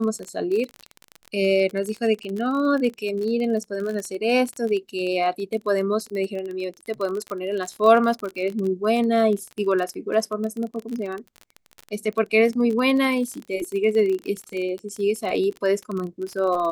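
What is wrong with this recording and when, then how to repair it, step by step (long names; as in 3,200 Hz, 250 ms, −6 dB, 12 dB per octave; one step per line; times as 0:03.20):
surface crackle 27 per second −27 dBFS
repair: click removal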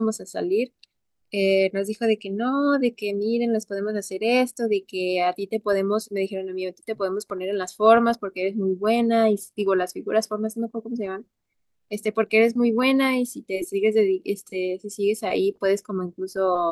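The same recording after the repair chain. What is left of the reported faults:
none of them is left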